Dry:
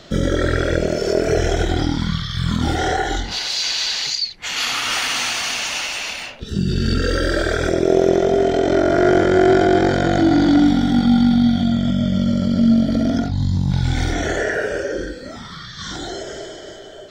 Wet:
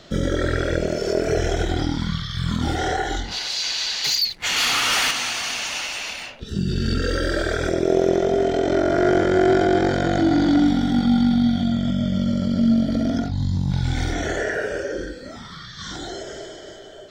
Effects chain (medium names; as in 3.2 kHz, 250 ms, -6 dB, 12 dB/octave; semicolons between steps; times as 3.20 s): 4.04–5.11 s: waveshaping leveller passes 2; trim -3.5 dB